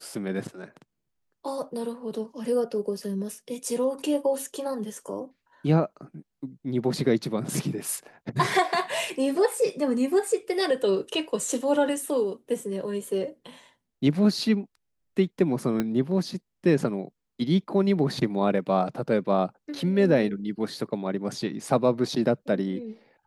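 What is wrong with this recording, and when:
15.8 pop -13 dBFS

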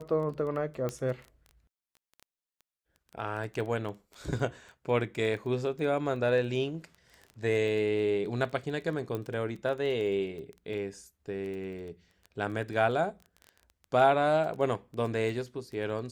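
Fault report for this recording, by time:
crackle 11/s -37 dBFS
0.89 pop -20 dBFS
9.15 pop -22 dBFS

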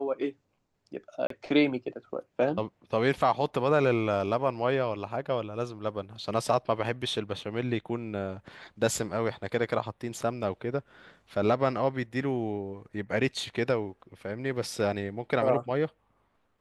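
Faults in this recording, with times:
1.27–1.3 gap 33 ms

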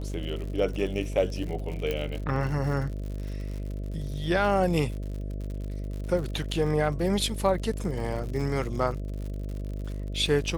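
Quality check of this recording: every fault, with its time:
buzz 50 Hz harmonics 13 -33 dBFS
crackle 84/s -35 dBFS
1.91 pop -16 dBFS

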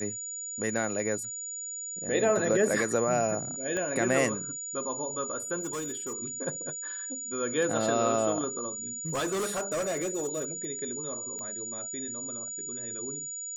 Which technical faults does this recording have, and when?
tone 6900 Hz -35 dBFS
3.77 pop -20 dBFS
5.6–6.21 clipped -30.5 dBFS
9.06–10.65 clipped -27 dBFS
11.39 pop -28 dBFS

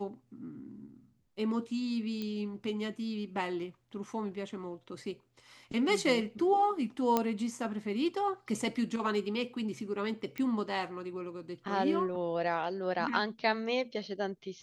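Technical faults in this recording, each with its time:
2.22 pop -25 dBFS
7.17 pop -13 dBFS
10.38 pop -24 dBFS

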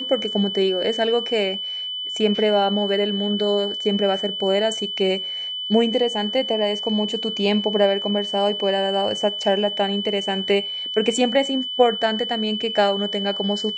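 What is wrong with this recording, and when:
tone 3000 Hz -26 dBFS

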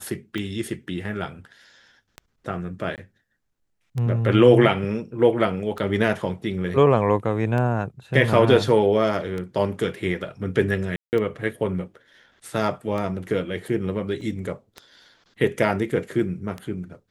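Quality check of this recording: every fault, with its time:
tick 33 1/3 rpm -18 dBFS
2.96–2.98 gap 18 ms
10.96–11.13 gap 0.169 s
14.21 gap 2.7 ms

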